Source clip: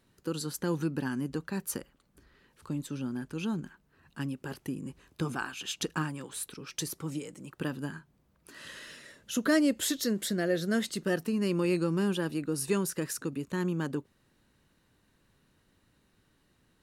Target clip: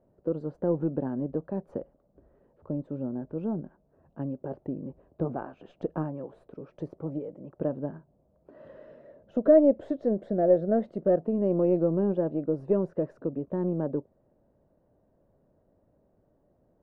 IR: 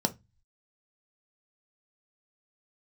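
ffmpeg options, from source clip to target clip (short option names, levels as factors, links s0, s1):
-af "aeval=exprs='0.188*(cos(1*acos(clip(val(0)/0.188,-1,1)))-cos(1*PI/2))+0.0119*(cos(4*acos(clip(val(0)/0.188,-1,1)))-cos(4*PI/2))+0.00266*(cos(6*acos(clip(val(0)/0.188,-1,1)))-cos(6*PI/2))':c=same,lowpass=f=620:t=q:w=4.9"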